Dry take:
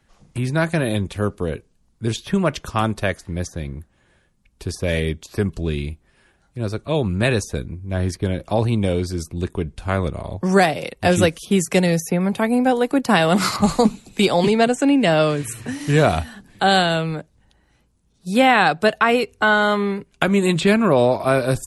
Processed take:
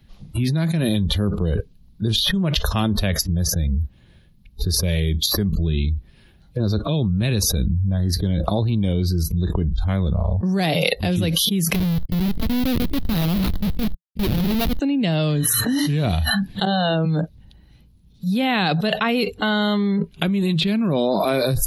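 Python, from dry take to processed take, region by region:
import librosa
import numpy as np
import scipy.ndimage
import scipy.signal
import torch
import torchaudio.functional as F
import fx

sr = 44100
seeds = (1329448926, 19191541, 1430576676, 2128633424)

y = fx.chain(x, sr, fx.lowpass(hz=6800.0, slope=12),
    fx.schmitt(flips_db=-17.0),
    fx.quant_companded(bits=4), at=(11.74, 14.81))
y = fx.chain(y, sr, fx.highpass(hz=210.0, slope=12),
    fx.level_steps(step_db=14),
    fx.spacing_loss(db_at_10k=29), at=(16.65, 17.06))
y = fx.noise_reduce_blind(y, sr, reduce_db=25)
y = fx.curve_eq(y, sr, hz=(170.0, 430.0, 960.0, 1400.0, 4000.0, 8000.0, 12000.0), db=(0, -11, -14, -16, -3, -22, -2))
y = fx.env_flatten(y, sr, amount_pct=100)
y = y * librosa.db_to_amplitude(-3.0)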